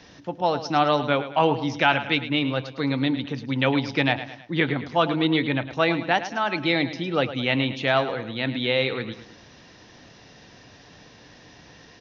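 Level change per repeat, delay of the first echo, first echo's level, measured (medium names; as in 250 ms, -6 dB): -6.5 dB, 107 ms, -12.5 dB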